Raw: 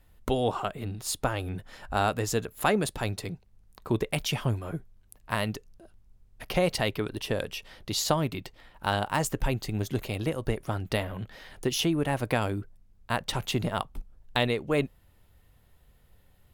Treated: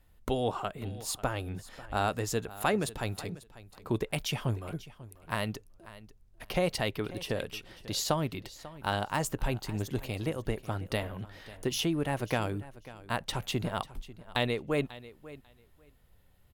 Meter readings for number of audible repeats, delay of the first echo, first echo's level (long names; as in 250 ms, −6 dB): 2, 543 ms, −17.5 dB